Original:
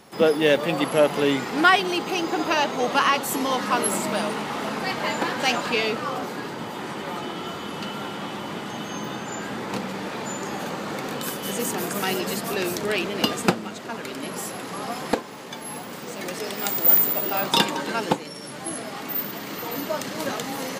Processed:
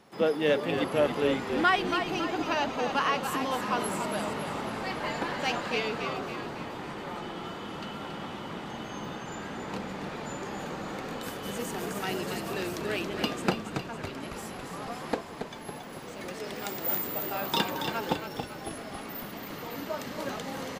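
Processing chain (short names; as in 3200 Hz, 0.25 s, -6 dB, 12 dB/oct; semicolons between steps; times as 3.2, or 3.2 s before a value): high shelf 5800 Hz -8 dB; frequency-shifting echo 0.277 s, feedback 54%, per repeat -43 Hz, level -7 dB; gain -7 dB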